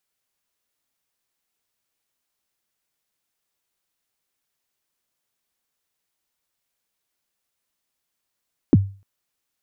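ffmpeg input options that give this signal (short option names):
-f lavfi -i "aevalsrc='0.501*pow(10,-3*t/0.36)*sin(2*PI*(360*0.032/log(98/360)*(exp(log(98/360)*min(t,0.032)/0.032)-1)+98*max(t-0.032,0)))':d=0.3:s=44100"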